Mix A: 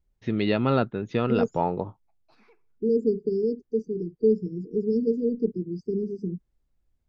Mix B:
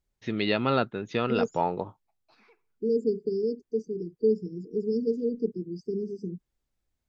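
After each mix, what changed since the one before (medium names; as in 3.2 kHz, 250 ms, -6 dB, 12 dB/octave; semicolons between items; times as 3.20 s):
background: add distance through air 64 m; master: add tilt EQ +2 dB/octave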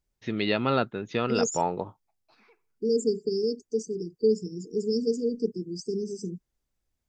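second voice: remove distance through air 330 m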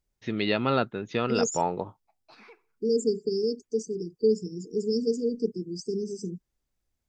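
background +9.0 dB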